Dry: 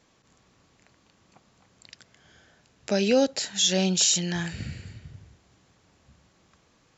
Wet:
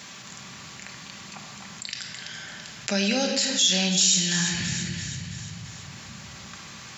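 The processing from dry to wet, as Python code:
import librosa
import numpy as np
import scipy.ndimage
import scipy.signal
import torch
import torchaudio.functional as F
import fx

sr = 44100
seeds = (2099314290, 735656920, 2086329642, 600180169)

y = scipy.signal.sosfilt(scipy.signal.butter(2, 150.0, 'highpass', fs=sr, output='sos'), x)
y = fx.peak_eq(y, sr, hz=420.0, db=-14.5, octaves=2.2)
y = fx.echo_wet_highpass(y, sr, ms=334, feedback_pct=35, hz=1600.0, wet_db=-12.5)
y = fx.room_shoebox(y, sr, seeds[0], volume_m3=1100.0, walls='mixed', distance_m=1.2)
y = fx.env_flatten(y, sr, amount_pct=50)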